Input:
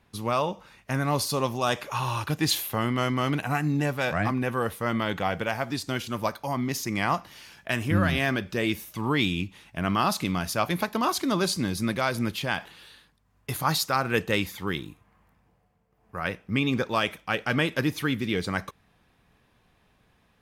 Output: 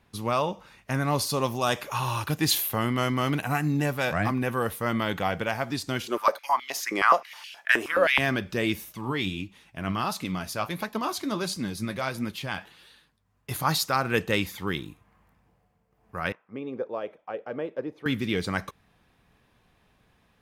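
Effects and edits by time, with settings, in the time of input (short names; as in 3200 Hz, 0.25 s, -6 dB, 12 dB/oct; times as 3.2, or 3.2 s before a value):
1.41–5.31 high shelf 12000 Hz +9.5 dB
6.07–8.18 stepped high-pass 9.5 Hz 390–2900 Hz
8.92–13.51 flange 1.5 Hz, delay 3.6 ms, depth 7.5 ms, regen +56%
16.32–18.06 auto-wah 500–1300 Hz, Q 2.4, down, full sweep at -26 dBFS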